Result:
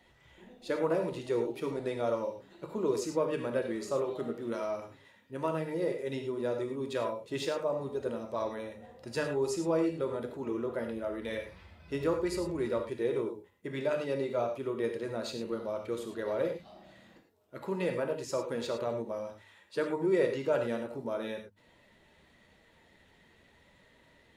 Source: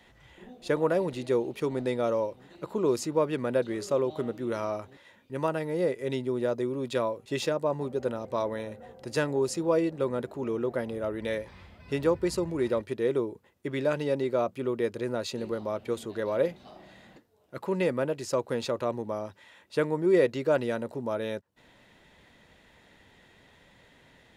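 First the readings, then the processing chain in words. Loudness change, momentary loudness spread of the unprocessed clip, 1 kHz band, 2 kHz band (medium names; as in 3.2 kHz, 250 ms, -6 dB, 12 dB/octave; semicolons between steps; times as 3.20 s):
-4.0 dB, 9 LU, -4.0 dB, -4.0 dB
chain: coarse spectral quantiser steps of 15 dB; hum notches 50/100/150/200/250 Hz; gated-style reverb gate 130 ms flat, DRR 3.5 dB; trim -5 dB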